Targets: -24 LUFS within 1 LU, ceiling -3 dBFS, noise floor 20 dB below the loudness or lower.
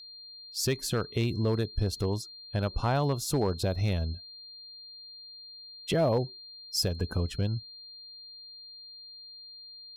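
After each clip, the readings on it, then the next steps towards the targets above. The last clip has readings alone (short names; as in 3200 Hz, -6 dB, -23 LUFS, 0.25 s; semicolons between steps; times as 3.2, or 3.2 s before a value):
clipped 0.3%; flat tops at -18.5 dBFS; steady tone 4200 Hz; tone level -45 dBFS; loudness -30.5 LUFS; peak -18.5 dBFS; loudness target -24.0 LUFS
-> clip repair -18.5 dBFS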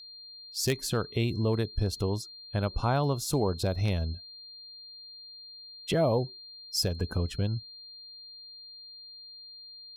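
clipped 0.0%; steady tone 4200 Hz; tone level -45 dBFS
-> notch 4200 Hz, Q 30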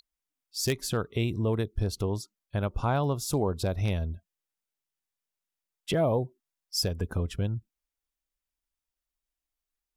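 steady tone none; loudness -30.0 LUFS; peak -9.5 dBFS; loudness target -24.0 LUFS
-> gain +6 dB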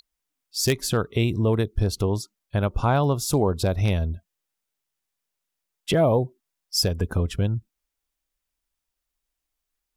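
loudness -24.0 LUFS; peak -3.5 dBFS; noise floor -83 dBFS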